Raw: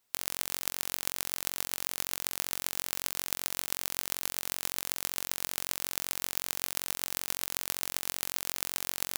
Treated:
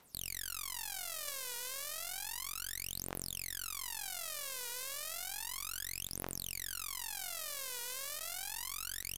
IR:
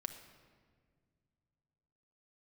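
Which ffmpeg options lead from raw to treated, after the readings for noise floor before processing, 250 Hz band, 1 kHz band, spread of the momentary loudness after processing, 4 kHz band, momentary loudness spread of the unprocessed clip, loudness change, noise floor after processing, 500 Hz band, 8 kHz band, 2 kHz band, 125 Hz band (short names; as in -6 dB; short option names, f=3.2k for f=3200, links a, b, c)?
-75 dBFS, -7.5 dB, -6.0 dB, 1 LU, -5.5 dB, 0 LU, -7.0 dB, -44 dBFS, -6.5 dB, -5.5 dB, -5.5 dB, -3.5 dB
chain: -filter_complex "[0:a]alimiter=limit=-12dB:level=0:latency=1,aphaser=in_gain=1:out_gain=1:delay=2.1:decay=0.77:speed=0.32:type=triangular,aeval=exprs='clip(val(0),-1,0.0335)':c=same,asplit=2[a][b];[1:a]atrim=start_sample=2205[c];[b][c]afir=irnorm=-1:irlink=0,volume=-12.5dB[d];[a][d]amix=inputs=2:normalize=0,aresample=32000,aresample=44100,volume=7dB"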